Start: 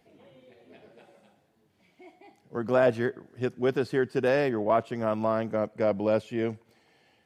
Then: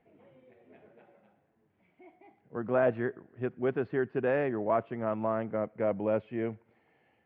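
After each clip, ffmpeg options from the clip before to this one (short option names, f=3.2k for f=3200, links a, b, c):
-af "lowpass=f=2.4k:w=0.5412,lowpass=f=2.4k:w=1.3066,volume=-4dB"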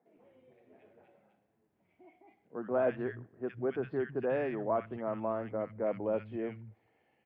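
-filter_complex "[0:a]acrossover=split=160|1600[a][b][c];[c]adelay=60[d];[a]adelay=160[e];[e][b][d]amix=inputs=3:normalize=0,volume=-3dB"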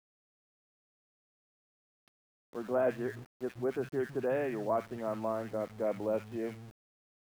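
-af "aeval=exprs='val(0)*gte(abs(val(0)),0.00355)':c=same"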